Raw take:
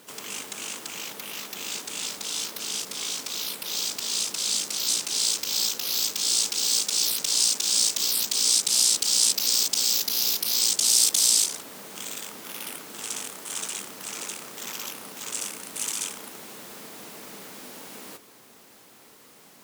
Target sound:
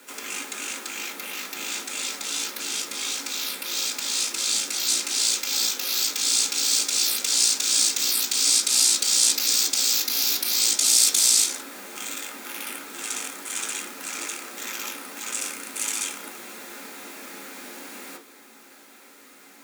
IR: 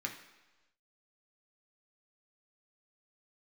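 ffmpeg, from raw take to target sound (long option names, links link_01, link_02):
-filter_complex "[0:a]highpass=frequency=240:width=0.5412,highpass=frequency=240:width=1.3066[link_01];[1:a]atrim=start_sample=2205,atrim=end_sample=3087[link_02];[link_01][link_02]afir=irnorm=-1:irlink=0,volume=3.5dB"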